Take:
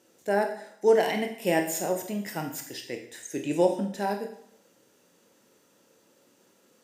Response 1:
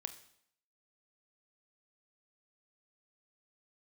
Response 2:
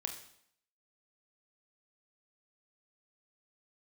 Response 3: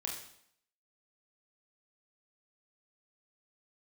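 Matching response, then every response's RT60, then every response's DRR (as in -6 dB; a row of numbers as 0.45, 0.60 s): 2; 0.65, 0.65, 0.65 s; 9.0, 3.5, -1.5 dB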